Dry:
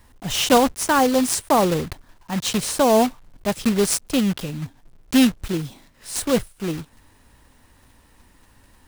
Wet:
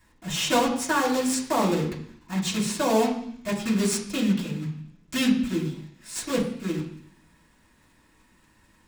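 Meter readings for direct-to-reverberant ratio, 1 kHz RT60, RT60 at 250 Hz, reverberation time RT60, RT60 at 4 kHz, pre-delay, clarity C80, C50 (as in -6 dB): -6.5 dB, 0.65 s, 0.85 s, 0.65 s, 0.85 s, 3 ms, 10.5 dB, 7.5 dB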